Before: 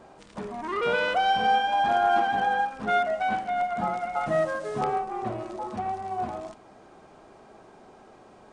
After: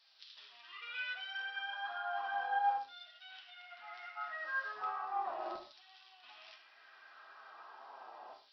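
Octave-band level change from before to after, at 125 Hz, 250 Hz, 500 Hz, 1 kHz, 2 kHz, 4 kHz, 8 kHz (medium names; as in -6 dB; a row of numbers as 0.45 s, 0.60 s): under -40 dB, -27.0 dB, -22.5 dB, -14.5 dB, -9.5 dB, -11.0 dB, no reading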